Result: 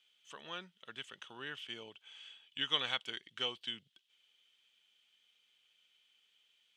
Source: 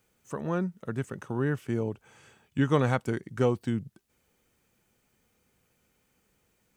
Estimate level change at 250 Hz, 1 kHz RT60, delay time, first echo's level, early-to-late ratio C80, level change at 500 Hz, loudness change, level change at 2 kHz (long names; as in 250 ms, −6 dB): −24.5 dB, no reverb audible, no echo audible, no echo audible, no reverb audible, −19.5 dB, −9.5 dB, −5.0 dB